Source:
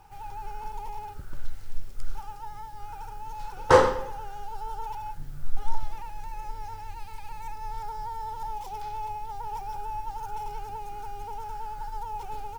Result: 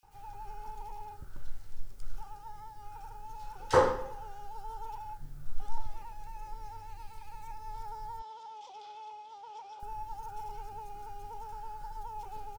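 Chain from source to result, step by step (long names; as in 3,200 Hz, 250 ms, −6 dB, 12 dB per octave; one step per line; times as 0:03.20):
0:08.19–0:09.80: loudspeaker in its box 450–6,400 Hz, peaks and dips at 600 Hz +5 dB, 850 Hz −5 dB, 1,700 Hz −8 dB, 3,300 Hz +9 dB
multiband delay without the direct sound highs, lows 30 ms, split 2,400 Hz
level −6.5 dB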